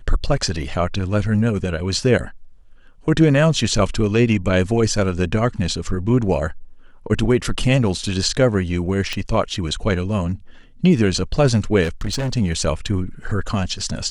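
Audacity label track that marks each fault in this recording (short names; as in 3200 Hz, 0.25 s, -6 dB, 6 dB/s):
9.130000	9.130000	pop -10 dBFS
11.830000	12.340000	clipped -18.5 dBFS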